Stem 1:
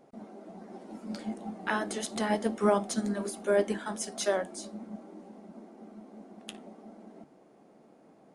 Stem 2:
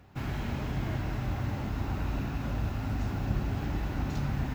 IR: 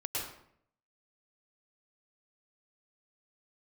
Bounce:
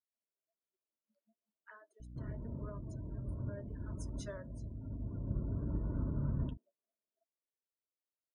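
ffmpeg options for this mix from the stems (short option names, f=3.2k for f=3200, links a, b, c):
-filter_complex "[0:a]highpass=500,volume=-16dB,afade=t=in:st=3.53:d=0.61:silence=0.446684,asplit=2[a][b];[1:a]aeval=exprs='val(0)+0.00891*(sin(2*PI*60*n/s)+sin(2*PI*2*60*n/s)/2+sin(2*PI*3*60*n/s)/3+sin(2*PI*4*60*n/s)/4+sin(2*PI*5*60*n/s)/5)':c=same,adynamicsmooth=sensitivity=0.5:basefreq=950,adelay=2000,volume=-4dB[c];[b]apad=whole_len=288760[d];[c][d]sidechaincompress=threshold=-55dB:ratio=3:attack=12:release=1330[e];[a][e]amix=inputs=2:normalize=0,afftdn=nr=30:nf=-53,asuperstop=centerf=780:order=8:qfactor=3.7"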